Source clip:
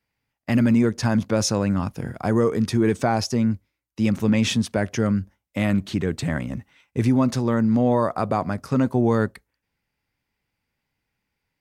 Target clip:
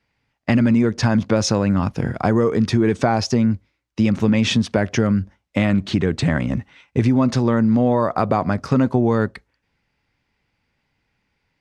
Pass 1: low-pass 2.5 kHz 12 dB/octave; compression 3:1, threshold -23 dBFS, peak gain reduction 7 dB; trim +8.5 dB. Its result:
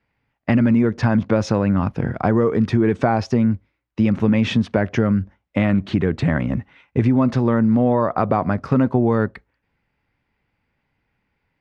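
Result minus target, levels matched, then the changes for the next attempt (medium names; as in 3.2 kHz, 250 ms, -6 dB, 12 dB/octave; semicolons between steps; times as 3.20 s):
4 kHz band -7.0 dB
change: low-pass 5.5 kHz 12 dB/octave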